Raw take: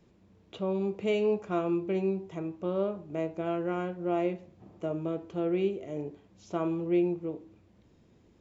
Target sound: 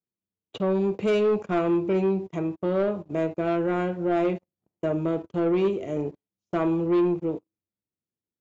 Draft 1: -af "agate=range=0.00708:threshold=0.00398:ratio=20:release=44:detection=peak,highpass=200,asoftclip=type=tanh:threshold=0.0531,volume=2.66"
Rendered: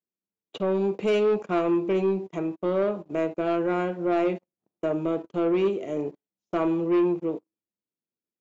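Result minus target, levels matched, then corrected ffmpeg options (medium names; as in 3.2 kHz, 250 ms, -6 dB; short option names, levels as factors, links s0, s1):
125 Hz band -4.0 dB
-af "agate=range=0.00708:threshold=0.00398:ratio=20:release=44:detection=peak,highpass=76,asoftclip=type=tanh:threshold=0.0531,volume=2.66"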